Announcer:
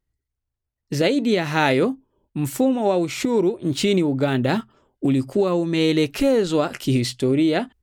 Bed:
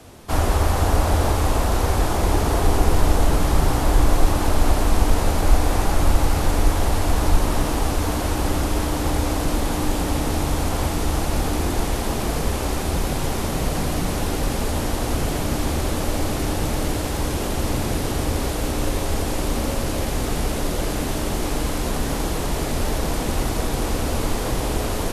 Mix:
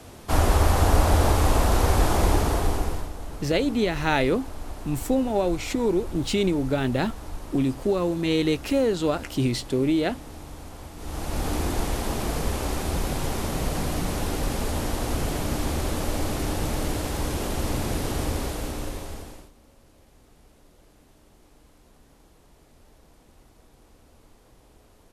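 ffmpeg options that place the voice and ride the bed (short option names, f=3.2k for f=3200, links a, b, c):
-filter_complex "[0:a]adelay=2500,volume=-4dB[a];[1:a]volume=14dB,afade=t=out:st=2.21:d=0.89:silence=0.125893,afade=t=in:st=10.96:d=0.56:silence=0.188365,afade=t=out:st=18.24:d=1.27:silence=0.0375837[b];[a][b]amix=inputs=2:normalize=0"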